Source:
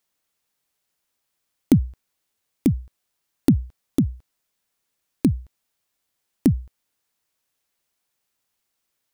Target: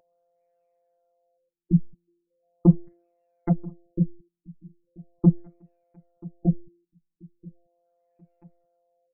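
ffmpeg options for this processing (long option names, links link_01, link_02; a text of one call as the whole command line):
ffmpeg -i in.wav -filter_complex "[0:a]agate=range=-11dB:threshold=-42dB:ratio=16:detection=peak,equalizer=frequency=180:width_type=o:width=0.6:gain=6.5,bandreject=frequency=296.2:width_type=h:width=4,bandreject=frequency=592.4:width_type=h:width=4,asplit=2[link_01][link_02];[link_02]acompressor=threshold=-25dB:ratio=6,volume=2dB[link_03];[link_01][link_03]amix=inputs=2:normalize=0,asoftclip=type=tanh:threshold=-6.5dB,aphaser=in_gain=1:out_gain=1:delay=1.5:decay=0.55:speed=0.41:type=sinusoidal,aeval=exprs='val(0)+0.00355*sin(2*PI*600*n/s)':channel_layout=same,afftfilt=real='hypot(re,im)*cos(PI*b)':imag='0':win_size=1024:overlap=0.75,asplit=2[link_04][link_05];[link_05]adelay=984,lowpass=frequency=4200:poles=1,volume=-22dB,asplit=2[link_06][link_07];[link_07]adelay=984,lowpass=frequency=4200:poles=1,volume=0.38,asplit=2[link_08][link_09];[link_09]adelay=984,lowpass=frequency=4200:poles=1,volume=0.38[link_10];[link_04][link_06][link_08][link_10]amix=inputs=4:normalize=0,afftfilt=real='re*lt(b*sr/1024,310*pow(2800/310,0.5+0.5*sin(2*PI*0.39*pts/sr)))':imag='im*lt(b*sr/1024,310*pow(2800/310,0.5+0.5*sin(2*PI*0.39*pts/sr)))':win_size=1024:overlap=0.75,volume=-3dB" out.wav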